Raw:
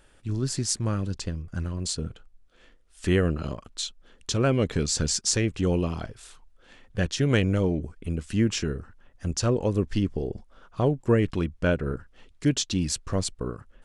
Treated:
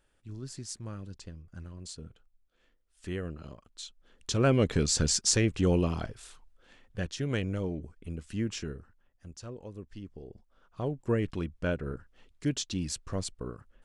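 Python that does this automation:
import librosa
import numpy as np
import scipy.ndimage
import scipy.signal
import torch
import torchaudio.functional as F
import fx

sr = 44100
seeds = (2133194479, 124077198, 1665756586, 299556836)

y = fx.gain(x, sr, db=fx.line((3.7, -13.5), (4.48, -1.0), (6.08, -1.0), (7.14, -9.0), (8.69, -9.0), (9.34, -19.0), (9.98, -19.0), (11.11, -7.0)))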